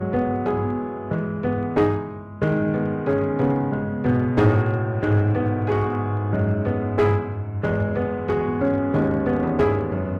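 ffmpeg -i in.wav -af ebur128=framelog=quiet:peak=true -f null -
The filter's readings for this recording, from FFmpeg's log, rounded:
Integrated loudness:
  I:         -22.4 LUFS
  Threshold: -32.5 LUFS
Loudness range:
  LRA:         2.1 LU
  Threshold: -42.3 LUFS
  LRA low:   -23.5 LUFS
  LRA high:  -21.4 LUFS
True peak:
  Peak:       -6.9 dBFS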